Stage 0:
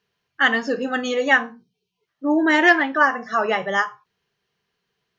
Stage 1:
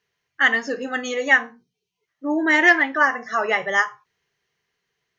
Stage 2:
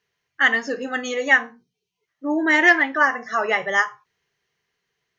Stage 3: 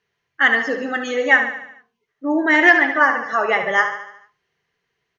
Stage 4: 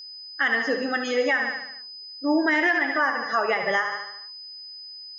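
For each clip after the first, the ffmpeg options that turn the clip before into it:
-af "equalizer=f=200:t=o:w=0.33:g=-7,equalizer=f=2k:t=o:w=0.33:g=8,equalizer=f=6.3k:t=o:w=0.33:g=7,dynaudnorm=f=210:g=11:m=11.5dB,volume=-2.5dB"
-af anull
-filter_complex "[0:a]highshelf=f=5.3k:g=-11.5,asplit=2[a][b];[b]aecho=0:1:73|146|219|292|365|438:0.355|0.188|0.0997|0.0528|0.028|0.0148[c];[a][c]amix=inputs=2:normalize=0,volume=3dB"
-af "aeval=exprs='val(0)+0.0158*sin(2*PI*5000*n/s)':c=same,alimiter=limit=-11dB:level=0:latency=1:release=151,volume=-2dB"

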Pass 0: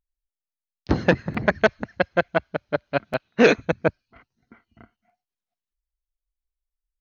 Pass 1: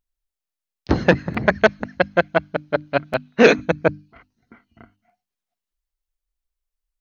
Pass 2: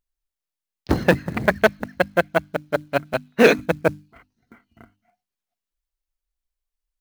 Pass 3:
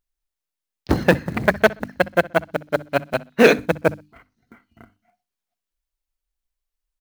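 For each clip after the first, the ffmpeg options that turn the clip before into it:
-af "bandreject=f=50:t=h:w=6,bandreject=f=100:t=h:w=6,bandreject=f=150:t=h:w=6,bandreject=f=200:t=h:w=6,bandreject=f=250:t=h:w=6,bandreject=f=300:t=h:w=6,volume=3.5dB"
-af "acrusher=bits=6:mode=log:mix=0:aa=0.000001,volume=-1.5dB"
-filter_complex "[0:a]asplit=2[a][b];[b]adelay=63,lowpass=f=4k:p=1,volume=-20.5dB,asplit=2[c][d];[d]adelay=63,lowpass=f=4k:p=1,volume=0.24[e];[a][c][e]amix=inputs=3:normalize=0,volume=1dB"

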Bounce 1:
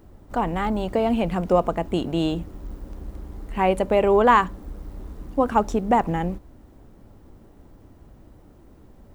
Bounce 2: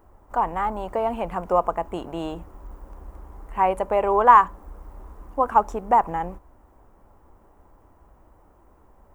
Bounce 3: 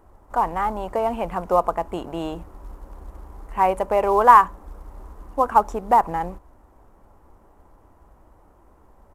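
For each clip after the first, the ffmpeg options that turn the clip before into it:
-af "equalizer=f=125:t=o:w=1:g=-8,equalizer=f=250:t=o:w=1:g=-6,equalizer=f=1k:t=o:w=1:g=10,equalizer=f=4k:t=o:w=1:g=-10,volume=-4dB"
-af "acrusher=bits=8:mode=log:mix=0:aa=0.000001,aresample=32000,aresample=44100,volume=1.5dB"

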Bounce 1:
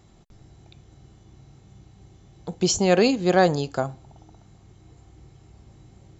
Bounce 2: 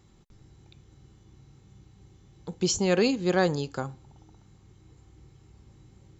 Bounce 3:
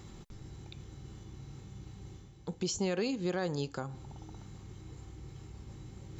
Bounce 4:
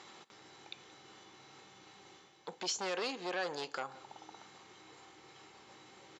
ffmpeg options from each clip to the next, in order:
-af "equalizer=f=670:w=6.6:g=-14,volume=-4dB"
-af "areverse,acompressor=mode=upward:threshold=-36dB:ratio=2.5,areverse,alimiter=limit=-22.5dB:level=0:latency=1:release=238,volume=-1.5dB"
-af "aeval=exprs='0.0668*sin(PI/2*1.58*val(0)/0.0668)':c=same,highpass=670,lowpass=5k,aecho=1:1:176:0.0944,volume=-1.5dB"

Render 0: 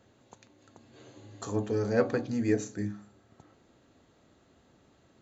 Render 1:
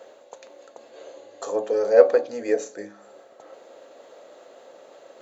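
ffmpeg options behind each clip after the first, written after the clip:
-af "areverse,acompressor=mode=upward:threshold=-44dB:ratio=2.5,areverse,highpass=f=540:t=q:w=4.9,volume=3dB"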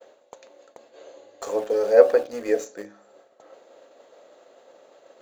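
-filter_complex "[0:a]asplit=2[a][b];[b]aeval=exprs='val(0)*gte(abs(val(0)),0.0299)':c=same,volume=-7.5dB[c];[a][c]amix=inputs=2:normalize=0,agate=range=-33dB:threshold=-45dB:ratio=3:detection=peak,volume=-3dB"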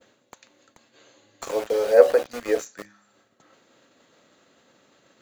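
-filter_complex "[0:a]lowshelf=f=390:g=-4.5,acrossover=split=220|1000|1300[a][b][c][d];[a]acompressor=mode=upward:threshold=-51dB:ratio=2.5[e];[b]aeval=exprs='val(0)*gte(abs(val(0)),0.0237)':c=same[f];[e][f][c][d]amix=inputs=4:normalize=0,volume=1.5dB"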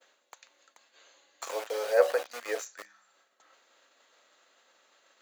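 -af "highpass=710,volume=-2.5dB"

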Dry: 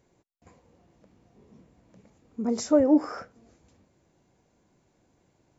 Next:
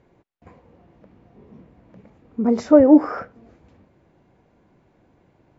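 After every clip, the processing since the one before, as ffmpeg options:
-af "lowpass=2.6k,volume=8.5dB"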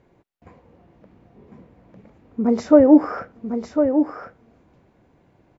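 -af "aecho=1:1:1052:0.447"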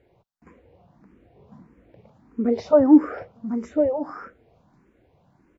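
-filter_complex "[0:a]asplit=2[a][b];[b]afreqshift=1.6[c];[a][c]amix=inputs=2:normalize=1"

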